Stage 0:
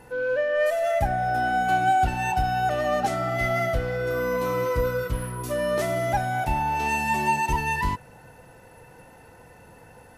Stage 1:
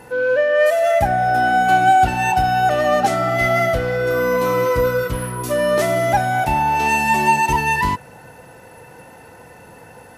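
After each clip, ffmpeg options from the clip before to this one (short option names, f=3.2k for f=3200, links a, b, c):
-af "highpass=f=120:p=1,volume=8dB"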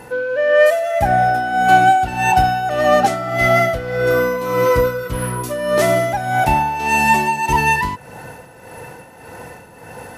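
-af "areverse,acompressor=mode=upward:threshold=-31dB:ratio=2.5,areverse,tremolo=f=1.7:d=0.65,volume=4dB"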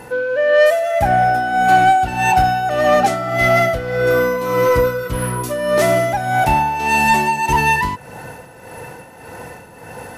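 -af "acontrast=37,volume=-4dB"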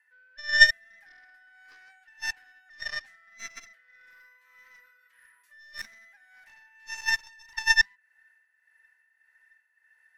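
-af "highpass=f=1.8k:t=q:w=15,aeval=exprs='3.16*(cos(1*acos(clip(val(0)/3.16,-1,1)))-cos(1*PI/2))+0.708*(cos(2*acos(clip(val(0)/3.16,-1,1)))-cos(2*PI/2))+1.12*(cos(3*acos(clip(val(0)/3.16,-1,1)))-cos(3*PI/2))+0.158*(cos(4*acos(clip(val(0)/3.16,-1,1)))-cos(4*PI/2))':c=same,volume=-14.5dB"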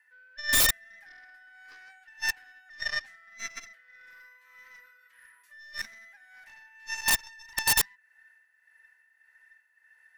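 -af "aeval=exprs='(mod(7.08*val(0)+1,2)-1)/7.08':c=same,volume=3dB"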